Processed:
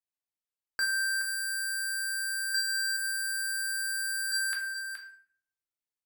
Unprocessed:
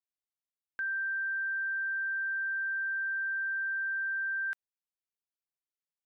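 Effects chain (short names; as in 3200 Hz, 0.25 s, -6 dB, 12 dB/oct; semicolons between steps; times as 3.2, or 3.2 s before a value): 2.54–4.32 comb 2.4 ms, depth 72%; sample leveller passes 5; echo 0.422 s -9 dB; reverb RT60 0.55 s, pre-delay 7 ms, DRR 1 dB; gain +3 dB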